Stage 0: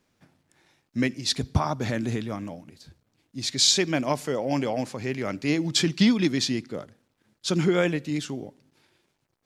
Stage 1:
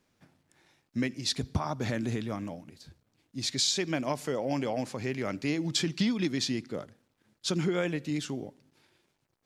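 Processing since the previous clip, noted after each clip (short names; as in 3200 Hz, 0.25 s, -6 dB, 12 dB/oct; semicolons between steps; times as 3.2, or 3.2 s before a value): compressor 2.5:1, threshold -25 dBFS, peak gain reduction 7 dB; gain -2 dB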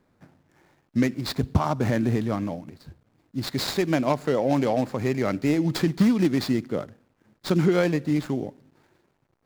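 median filter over 15 samples; gain +8.5 dB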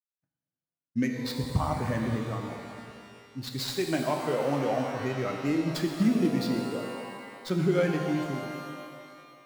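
per-bin expansion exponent 1.5; expander -57 dBFS; shimmer reverb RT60 2.2 s, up +12 st, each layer -8 dB, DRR 2 dB; gain -3.5 dB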